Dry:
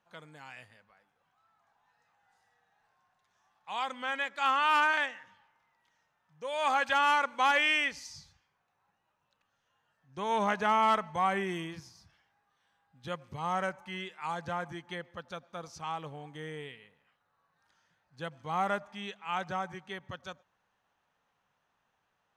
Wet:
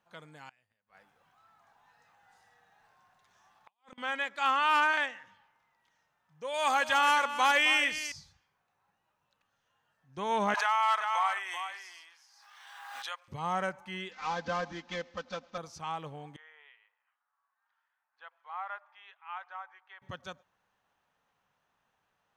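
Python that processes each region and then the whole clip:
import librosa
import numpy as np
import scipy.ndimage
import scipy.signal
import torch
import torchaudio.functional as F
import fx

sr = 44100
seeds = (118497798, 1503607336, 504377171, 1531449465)

y = fx.chain(x, sr, fx.over_compress(threshold_db=-46.0, ratio=-0.5),
    fx.gate_flip(shuts_db=-40.0, range_db=-30), at=(0.49, 3.98))
y = fx.chain(y, sr, fx.high_shelf(hz=5600.0, db=10.5),
    fx.echo_single(ms=262, db=-12.0), at=(6.54, 8.12))
y = fx.chain(y, sr, fx.highpass(hz=840.0, slope=24),
    fx.echo_single(ms=383, db=-9.0),
    fx.pre_swell(db_per_s=32.0), at=(10.54, 13.28))
y = fx.chain(y, sr, fx.cvsd(bps=32000),
    fx.comb(ms=3.9, depth=0.95), at=(14.11, 15.58))
y = fx.chain(y, sr, fx.highpass(hz=930.0, slope=24),
    fx.spacing_loss(db_at_10k=43), at=(16.36, 20.02))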